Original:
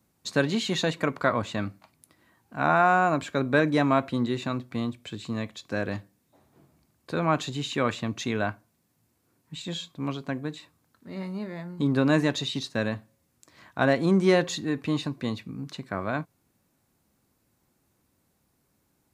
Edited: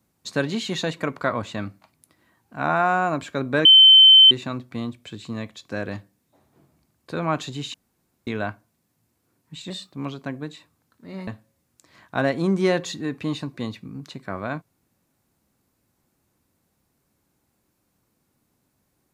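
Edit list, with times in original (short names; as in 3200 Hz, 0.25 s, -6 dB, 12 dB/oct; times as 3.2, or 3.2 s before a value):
3.65–4.31 bleep 3080 Hz -7 dBFS
7.74–8.27 room tone
9.7–9.96 speed 111%
11.3–12.91 cut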